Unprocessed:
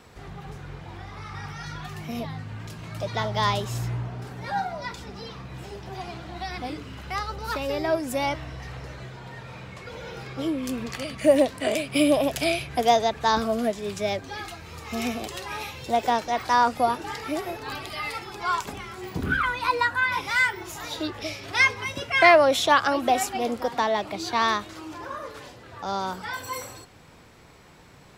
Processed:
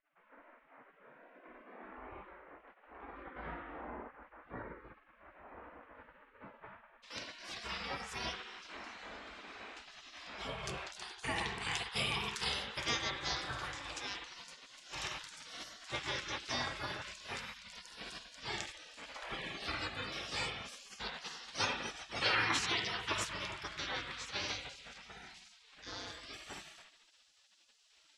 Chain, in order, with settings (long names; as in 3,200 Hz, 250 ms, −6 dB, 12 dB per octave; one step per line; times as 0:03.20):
parametric band 61 Hz −5.5 dB 0.44 octaves
convolution reverb RT60 1.0 s, pre-delay 39 ms, DRR 3 dB
gate on every frequency bin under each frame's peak −20 dB weak
Bessel low-pass filter 1,200 Hz, order 6, from 0:07.02 6,200 Hz
level −3 dB